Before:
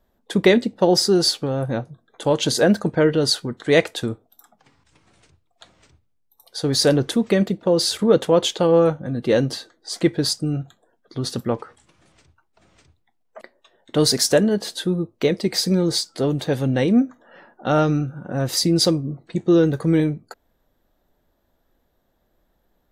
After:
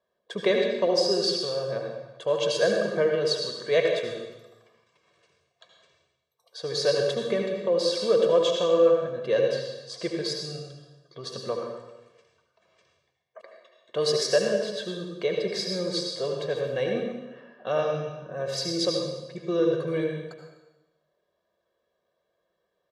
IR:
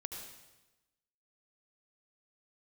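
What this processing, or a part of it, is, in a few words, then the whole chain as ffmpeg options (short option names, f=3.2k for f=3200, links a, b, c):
supermarket ceiling speaker: -filter_complex "[0:a]highpass=250,lowpass=5.5k[a];[1:a]atrim=start_sample=2205[b];[a][b]afir=irnorm=-1:irlink=0,aecho=1:1:1.8:0.88,volume=-6dB"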